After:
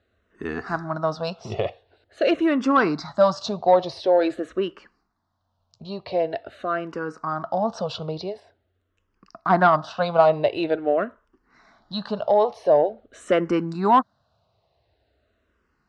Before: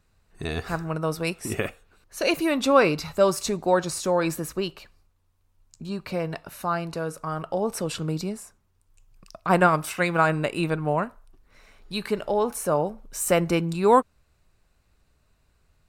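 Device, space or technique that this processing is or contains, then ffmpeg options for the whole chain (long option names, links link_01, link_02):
barber-pole phaser into a guitar amplifier: -filter_complex "[0:a]asplit=2[link_01][link_02];[link_02]afreqshift=-0.46[link_03];[link_01][link_03]amix=inputs=2:normalize=1,asoftclip=type=tanh:threshold=-14dB,highpass=100,equalizer=frequency=160:width_type=q:width=4:gain=-7,equalizer=frequency=670:width_type=q:width=4:gain=8,equalizer=frequency=2400:width_type=q:width=4:gain=-10,lowpass=frequency=4600:width=0.5412,lowpass=frequency=4600:width=1.3066,asettb=1/sr,asplit=3[link_04][link_05][link_06];[link_04]atrim=end=8.404[link_07];[link_05]atrim=start=8.4:end=10.08,asetpts=PTS-STARTPTS,afade=type=in:duration=0.004:curve=qsin,afade=type=out:start_time=1.676:duration=0.004:curve=qsin,lowpass=6000[link_08];[link_06]atrim=start=10.076[link_09];[link_07][link_08]acrossfade=duration=0.004:curve1=hsin:curve2=qsin[link_10];[link_10][link_09]acrossfade=duration=0.004:curve1=qsin:curve2=hsin,volume=5dB"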